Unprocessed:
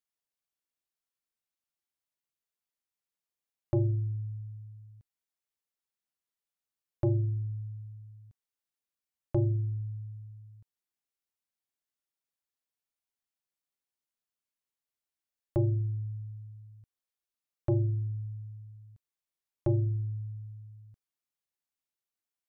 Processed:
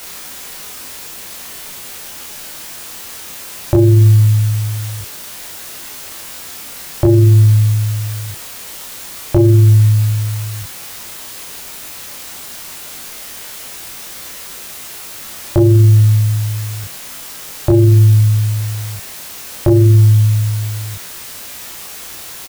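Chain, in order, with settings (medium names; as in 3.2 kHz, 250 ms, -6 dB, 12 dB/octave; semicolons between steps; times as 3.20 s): compression 6:1, threshold -31 dBFS, peak gain reduction 7.5 dB; word length cut 10-bit, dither triangular; on a send: early reflections 20 ms -4.5 dB, 32 ms -3 dB; on the sum: loudness maximiser +27.5 dB; trim -1 dB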